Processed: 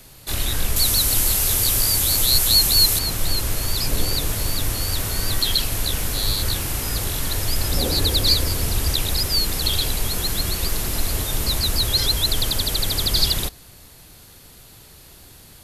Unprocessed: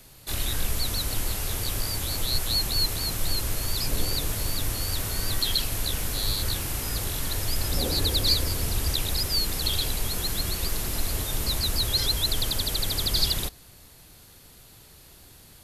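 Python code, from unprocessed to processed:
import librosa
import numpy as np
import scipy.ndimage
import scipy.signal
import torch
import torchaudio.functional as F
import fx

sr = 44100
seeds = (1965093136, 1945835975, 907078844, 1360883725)

y = fx.high_shelf(x, sr, hz=4500.0, db=10.0, at=(0.76, 2.99))
y = y * librosa.db_to_amplitude(5.0)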